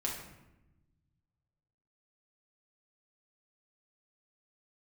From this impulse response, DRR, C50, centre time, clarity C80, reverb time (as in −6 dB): −2.5 dB, 4.0 dB, 42 ms, 7.0 dB, 0.95 s